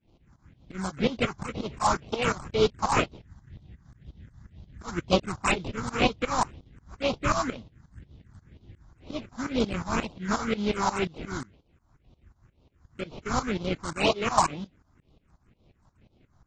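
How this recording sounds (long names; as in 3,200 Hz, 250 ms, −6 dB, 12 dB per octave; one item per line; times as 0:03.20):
aliases and images of a low sample rate 1,800 Hz, jitter 20%
phaser sweep stages 4, 2 Hz, lowest notch 420–1,700 Hz
tremolo saw up 5.6 Hz, depth 95%
AAC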